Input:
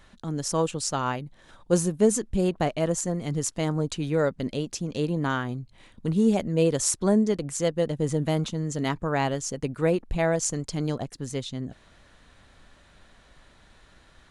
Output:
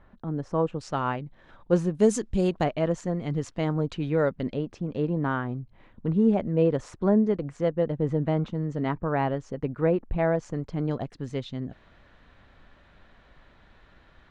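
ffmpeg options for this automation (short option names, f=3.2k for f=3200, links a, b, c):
-af "asetnsamples=n=441:p=0,asendcmd='0.81 lowpass f 2500;1.95 lowpass f 6200;2.64 lowpass f 2800;4.54 lowpass f 1700;10.91 lowpass f 2900',lowpass=1.3k"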